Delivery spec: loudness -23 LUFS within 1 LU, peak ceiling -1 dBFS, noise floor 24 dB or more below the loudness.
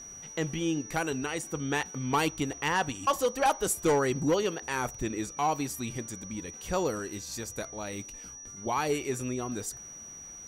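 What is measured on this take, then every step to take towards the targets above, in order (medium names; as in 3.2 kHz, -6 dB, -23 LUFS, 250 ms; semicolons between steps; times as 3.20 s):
steady tone 5.8 kHz; tone level -43 dBFS; loudness -31.0 LUFS; peak level -17.0 dBFS; loudness target -23.0 LUFS
-> band-stop 5.8 kHz, Q 30; trim +8 dB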